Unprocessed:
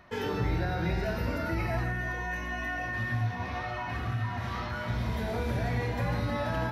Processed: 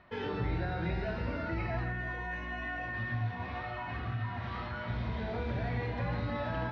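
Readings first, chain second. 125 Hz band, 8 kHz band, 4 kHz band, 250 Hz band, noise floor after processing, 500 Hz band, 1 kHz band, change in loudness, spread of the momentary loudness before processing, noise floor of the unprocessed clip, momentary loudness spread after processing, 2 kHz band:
−4.0 dB, below −15 dB, −5.5 dB, −4.0 dB, −40 dBFS, −4.0 dB, −4.0 dB, −4.0 dB, 4 LU, −36 dBFS, 4 LU, −4.0 dB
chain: low-pass filter 4,200 Hz 24 dB per octave
level −4 dB

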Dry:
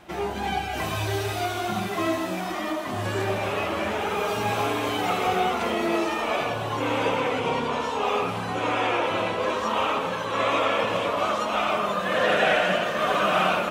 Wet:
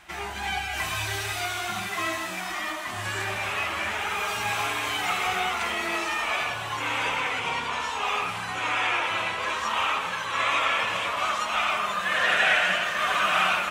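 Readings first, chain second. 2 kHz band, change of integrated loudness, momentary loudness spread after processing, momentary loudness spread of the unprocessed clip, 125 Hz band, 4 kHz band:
+3.5 dB, −0.5 dB, 7 LU, 6 LU, −7.5 dB, +2.5 dB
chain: graphic EQ with 10 bands 125 Hz −7 dB, 250 Hz −10 dB, 500 Hz −11 dB, 2,000 Hz +5 dB, 8,000 Hz +5 dB

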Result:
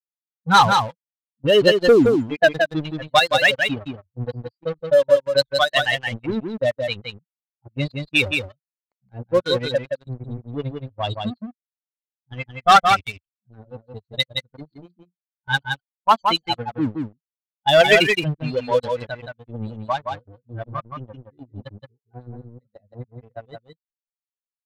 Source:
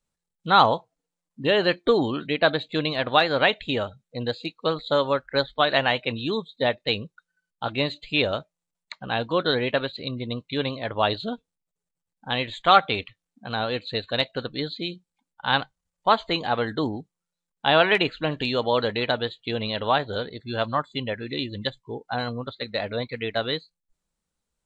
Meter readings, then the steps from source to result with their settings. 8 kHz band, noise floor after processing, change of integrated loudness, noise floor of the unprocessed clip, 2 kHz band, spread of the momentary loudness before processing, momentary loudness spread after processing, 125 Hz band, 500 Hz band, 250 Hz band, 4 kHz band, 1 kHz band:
can't be measured, below −85 dBFS, +5.0 dB, below −85 dBFS, +4.0 dB, 12 LU, 20 LU, +3.5 dB, +4.5 dB, +2.5 dB, +2.0 dB, +3.5 dB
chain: spectral dynamics exaggerated over time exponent 3
leveller curve on the samples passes 3
low-pass that shuts in the quiet parts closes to 590 Hz, open at −16.5 dBFS
on a send: single-tap delay 171 ms −5 dB
on the sum: level +1.5 dB

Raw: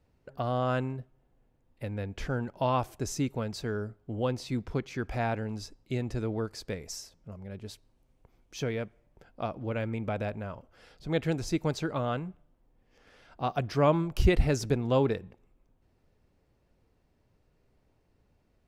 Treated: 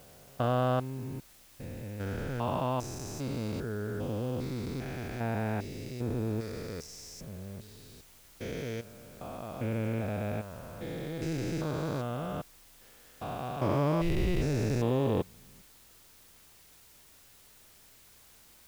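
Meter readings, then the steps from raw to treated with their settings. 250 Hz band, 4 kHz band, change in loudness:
−1.0 dB, −3.5 dB, −2.5 dB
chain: spectrum averaged block by block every 400 ms
bit-depth reduction 10 bits, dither triangular
level +2 dB

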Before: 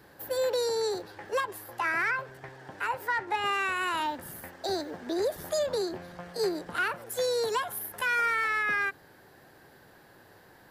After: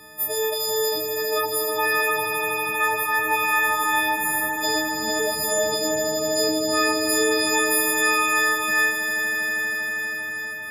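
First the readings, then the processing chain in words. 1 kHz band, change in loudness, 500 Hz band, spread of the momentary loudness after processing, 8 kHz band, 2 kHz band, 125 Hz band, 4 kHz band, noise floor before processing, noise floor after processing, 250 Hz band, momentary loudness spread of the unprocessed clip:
+7.0 dB, +8.5 dB, +6.5 dB, 5 LU, +17.5 dB, +9.5 dB, +5.0 dB, +11.5 dB, −57 dBFS, −30 dBFS, +10.5 dB, 10 LU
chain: every partial snapped to a pitch grid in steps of 6 semitones
brickwall limiter −19 dBFS, peak gain reduction 6 dB
high-shelf EQ 12,000 Hz −3.5 dB
echo that builds up and dies away 80 ms, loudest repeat 8, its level −6 dB
level +4 dB

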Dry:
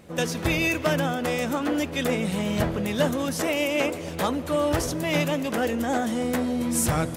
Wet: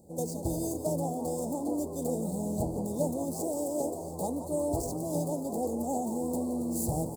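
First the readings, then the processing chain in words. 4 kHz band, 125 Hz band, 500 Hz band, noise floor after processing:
−22.0 dB, −6.5 dB, −6.0 dB, −39 dBFS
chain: running median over 5 samples
Chebyshev band-stop filter 850–4,500 Hz, order 4
high shelf with overshoot 6,600 Hz +7 dB, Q 3
on a send: echo with shifted repeats 174 ms, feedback 44%, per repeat +100 Hz, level −12 dB
on the sum: level −6 dB

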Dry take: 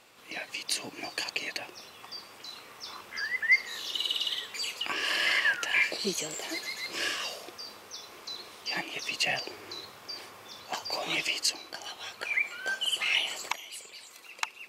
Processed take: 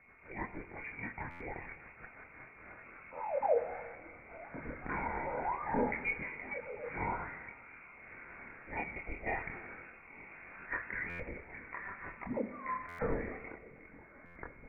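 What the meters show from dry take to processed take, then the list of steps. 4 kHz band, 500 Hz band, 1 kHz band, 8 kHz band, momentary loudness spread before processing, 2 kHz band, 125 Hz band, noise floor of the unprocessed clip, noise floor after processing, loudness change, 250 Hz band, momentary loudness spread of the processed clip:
below −40 dB, +3.5 dB, +1.0 dB, below −40 dB, 17 LU, −11.5 dB, +5.5 dB, −52 dBFS, −56 dBFS, −9.5 dB, +2.0 dB, 18 LU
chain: brickwall limiter −21.5 dBFS, peak gain reduction 10 dB
multi-voice chorus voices 2, 0.29 Hz, delay 25 ms, depth 2.6 ms
steady tone 430 Hz −63 dBFS
rotating-speaker cabinet horn 6.3 Hz, later 0.85 Hz, at 0:02.01
four-comb reverb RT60 1.7 s, combs from 32 ms, DRR 12.5 dB
voice inversion scrambler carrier 2,600 Hz
buffer that repeats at 0:01.30/0:11.09/0:12.88/0:14.25, samples 512
level +3.5 dB

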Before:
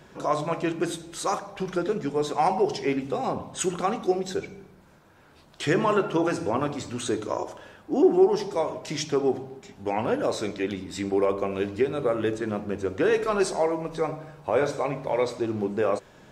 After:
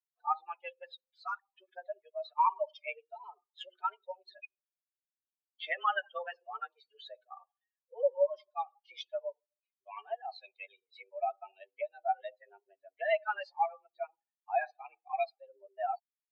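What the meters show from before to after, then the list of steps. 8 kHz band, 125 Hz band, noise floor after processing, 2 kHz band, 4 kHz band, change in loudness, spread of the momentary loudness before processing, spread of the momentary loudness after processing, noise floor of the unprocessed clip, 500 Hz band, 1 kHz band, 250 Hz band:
below −35 dB, below −40 dB, below −85 dBFS, −6.0 dB, −11.5 dB, −10.0 dB, 9 LU, 20 LU, −54 dBFS, −13.0 dB, −5.5 dB, below −40 dB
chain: spectral dynamics exaggerated over time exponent 3
single-sideband voice off tune +190 Hz 440–3,500 Hz

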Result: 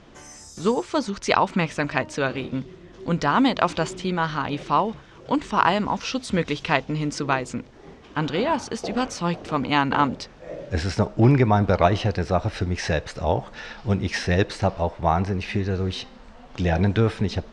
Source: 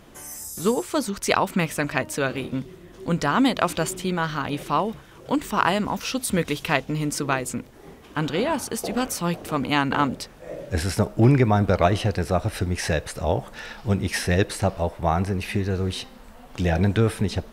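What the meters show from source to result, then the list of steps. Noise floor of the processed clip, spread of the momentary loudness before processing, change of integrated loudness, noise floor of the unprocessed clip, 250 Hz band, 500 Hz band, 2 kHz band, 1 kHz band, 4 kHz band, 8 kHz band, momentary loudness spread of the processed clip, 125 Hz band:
−47 dBFS, 12 LU, +0.5 dB, −47 dBFS, 0.0 dB, +0.5 dB, 0.0 dB, +2.5 dB, 0.0 dB, −6.5 dB, 13 LU, 0.0 dB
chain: low-pass filter 6,300 Hz 24 dB per octave
dynamic equaliser 920 Hz, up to +4 dB, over −34 dBFS, Q 2.7

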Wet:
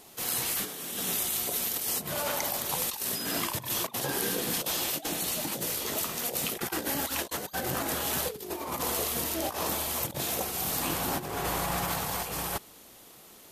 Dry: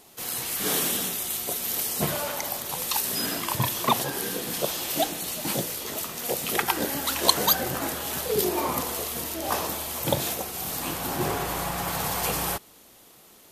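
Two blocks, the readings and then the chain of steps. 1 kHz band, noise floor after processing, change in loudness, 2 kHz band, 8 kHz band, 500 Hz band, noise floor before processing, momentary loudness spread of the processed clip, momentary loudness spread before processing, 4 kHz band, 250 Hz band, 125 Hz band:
−5.0 dB, −52 dBFS, −3.5 dB, −3.0 dB, −2.5 dB, −5.0 dB, −53 dBFS, 4 LU, 6 LU, −4.5 dB, −4.0 dB, −5.0 dB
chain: compressor whose output falls as the input rises −30 dBFS, ratio −0.5
level −1.5 dB

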